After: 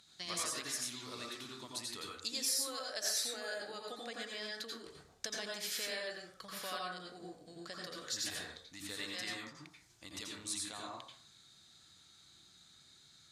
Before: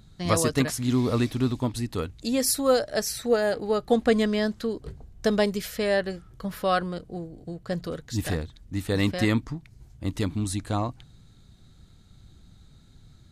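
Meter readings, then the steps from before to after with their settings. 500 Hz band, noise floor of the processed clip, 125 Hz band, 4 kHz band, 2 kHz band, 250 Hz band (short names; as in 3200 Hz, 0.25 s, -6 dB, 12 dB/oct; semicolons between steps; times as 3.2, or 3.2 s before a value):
-21.5 dB, -64 dBFS, -29.5 dB, -4.0 dB, -10.5 dB, -24.5 dB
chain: compressor 6:1, threshold -32 dBFS, peak gain reduction 15.5 dB; band-pass 5300 Hz, Q 0.65; plate-style reverb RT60 0.52 s, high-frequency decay 0.45×, pre-delay 75 ms, DRR -2 dB; gain +2.5 dB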